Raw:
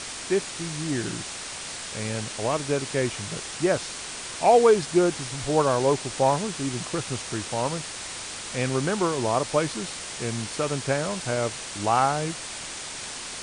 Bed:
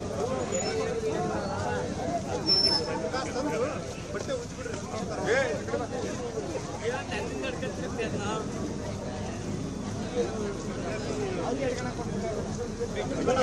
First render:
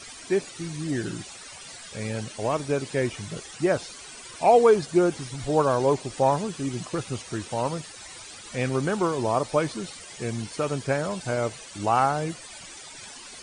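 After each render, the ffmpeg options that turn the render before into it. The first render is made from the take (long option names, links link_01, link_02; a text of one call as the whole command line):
ffmpeg -i in.wav -af "afftdn=noise_reduction=14:noise_floor=-36" out.wav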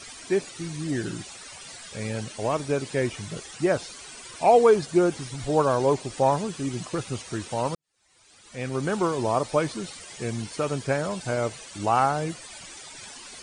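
ffmpeg -i in.wav -filter_complex "[0:a]asplit=2[link_01][link_02];[link_01]atrim=end=7.75,asetpts=PTS-STARTPTS,afade=type=out:start_time=7.746:duration=0.004:curve=hsin[link_03];[link_02]atrim=start=7.75,asetpts=PTS-STARTPTS,afade=type=in:duration=1.19:curve=qua[link_04];[link_03][link_04]concat=n=2:v=0:a=1" out.wav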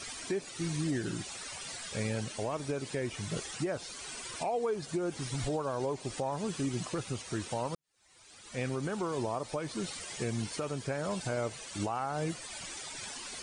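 ffmpeg -i in.wav -af "acompressor=threshold=-23dB:ratio=6,alimiter=limit=-24dB:level=0:latency=1:release=399" out.wav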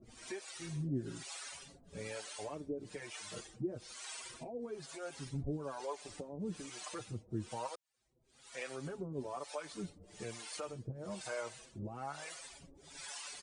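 ffmpeg -i in.wav -filter_complex "[0:a]acrossover=split=490[link_01][link_02];[link_01]aeval=exprs='val(0)*(1-1/2+1/2*cos(2*PI*1.1*n/s))':channel_layout=same[link_03];[link_02]aeval=exprs='val(0)*(1-1/2-1/2*cos(2*PI*1.1*n/s))':channel_layout=same[link_04];[link_03][link_04]amix=inputs=2:normalize=0,asplit=2[link_05][link_06];[link_06]adelay=6,afreqshift=0.27[link_07];[link_05][link_07]amix=inputs=2:normalize=1" out.wav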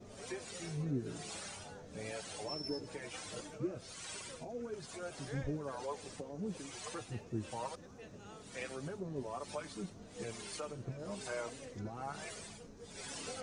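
ffmpeg -i in.wav -i bed.wav -filter_complex "[1:a]volume=-21.5dB[link_01];[0:a][link_01]amix=inputs=2:normalize=0" out.wav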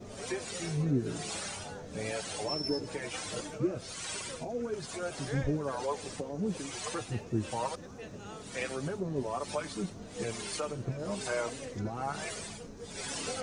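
ffmpeg -i in.wav -af "volume=7.5dB" out.wav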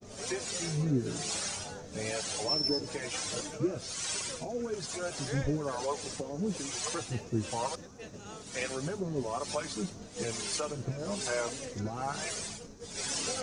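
ffmpeg -i in.wav -af "agate=range=-33dB:threshold=-42dB:ratio=3:detection=peak,equalizer=frequency=6000:width=1.2:gain=7" out.wav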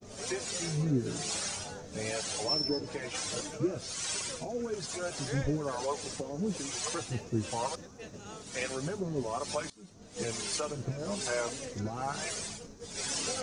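ffmpeg -i in.wav -filter_complex "[0:a]asettb=1/sr,asplit=3[link_01][link_02][link_03];[link_01]atrim=end=2.644[link_04];[link_02]atrim=start=2.64:end=3.15,asetpts=PTS-STARTPTS,afade=type=in:duration=0.004:curve=qsin,afade=type=out:start_time=0.506:duration=0.004:curve=qsin,lowpass=frequency=3600:poles=1[link_05];[link_03]atrim=start=3.146[link_06];[link_04][link_05]acrossfade=duration=0.004:curve1=hsin:curve2=qsin[link_07];[link_07][link_06]acrossfade=duration=0.004:curve1=qsin:curve2=hsin,asplit=2[link_08][link_09];[link_08]atrim=end=9.7,asetpts=PTS-STARTPTS,afade=type=out:start_time=9.696:duration=0.004:curve=hsin:silence=0.0794328[link_10];[link_09]atrim=start=9.7,asetpts=PTS-STARTPTS,afade=type=in:duration=0.49:curve=qua:silence=0.0794328[link_11];[link_10][link_11]concat=n=2:v=0:a=1" out.wav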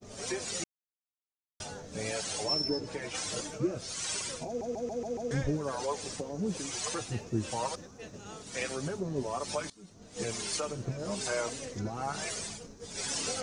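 ffmpeg -i in.wav -filter_complex "[0:a]asplit=9[link_01][link_02][link_03][link_04][link_05][link_06][link_07][link_08][link_09];[link_01]atrim=end=0.64,asetpts=PTS-STARTPTS,afade=type=out:start_time=0.636:duration=0.004:curve=hsin[link_10];[link_02]atrim=start=0.64:end=1.6,asetpts=PTS-STARTPTS,volume=0[link_11];[link_03]atrim=start=1.6:end=4.612,asetpts=PTS-STARTPTS,afade=type=in:duration=0.004:curve=hsin[link_12];[link_04]atrim=start=4.468:end=4.612[link_13];[link_05]atrim=start=4.468:end=4.612[link_14];[link_06]atrim=start=4.468:end=4.612[link_15];[link_07]atrim=start=4.468:end=4.612[link_16];[link_08]atrim=start=4.468:end=4.612[link_17];[link_09]atrim=start=5.308[link_18];[link_10][link_11][link_12]concat=n=3:v=0:a=1[link_19];[link_19][link_13]acrossfade=duration=0.004:curve1=hsin:curve2=hsin[link_20];[link_20][link_14]acrossfade=duration=0.004:curve1=hsin:curve2=hsin[link_21];[link_21][link_15]acrossfade=duration=0.004:curve1=hsin:curve2=hsin[link_22];[link_22][link_16]acrossfade=duration=0.004:curve1=hsin:curve2=hsin[link_23];[link_23][link_17]acrossfade=duration=0.004:curve1=hsin:curve2=hsin[link_24];[link_24][link_18]acrossfade=duration=0.004:curve1=hsin:curve2=hsin" out.wav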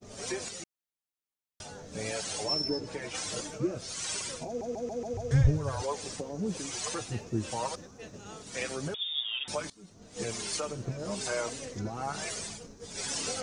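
ffmpeg -i in.wav -filter_complex "[0:a]asettb=1/sr,asplit=3[link_01][link_02][link_03];[link_01]atrim=end=0.484[link_04];[link_02]atrim=start=0.48:end=1.91,asetpts=PTS-STARTPTS,afade=type=in:duration=0.004:curve=qsin,afade=type=out:start_time=1.426:duration=0.004:curve=qsin,acompressor=threshold=-41dB:ratio=2.5:attack=3.2:release=140:knee=1:detection=peak[link_05];[link_03]atrim=start=1.906[link_06];[link_04][link_05]acrossfade=duration=0.004:curve1=hsin:curve2=qsin[link_07];[link_07][link_06]acrossfade=duration=0.004:curve1=qsin:curve2=hsin,asettb=1/sr,asplit=3[link_08][link_09][link_10];[link_08]atrim=end=5.134[link_11];[link_09]atrim=start=5.13:end=5.82,asetpts=PTS-STARTPTS,afade=type=in:duration=0.004:curve=qsin,afade=type=out:start_time=0.686:duration=0.004:curve=qsin,lowshelf=frequency=150:width_type=q:width=3:gain=11.5[link_12];[link_10]atrim=start=5.816[link_13];[link_11][link_12]acrossfade=duration=0.004:curve1=hsin:curve2=qsin[link_14];[link_14][link_13]acrossfade=duration=0.004:curve1=qsin:curve2=hsin,asettb=1/sr,asplit=3[link_15][link_16][link_17];[link_15]atrim=end=8.944[link_18];[link_16]atrim=start=8.94:end=9.48,asetpts=PTS-STARTPTS,afade=type=in:duration=0.004:curve=qsin,afade=type=out:start_time=0.536:duration=0.004:curve=qsin,lowpass=frequency=3200:width_type=q:width=0.5098,lowpass=frequency=3200:width_type=q:width=0.6013,lowpass=frequency=3200:width_type=q:width=0.9,lowpass=frequency=3200:width_type=q:width=2.563,afreqshift=-3800[link_19];[link_17]atrim=start=9.476[link_20];[link_18][link_19]acrossfade=duration=0.004:curve1=hsin:curve2=qsin[link_21];[link_21][link_20]acrossfade=duration=0.004:curve1=qsin:curve2=hsin" out.wav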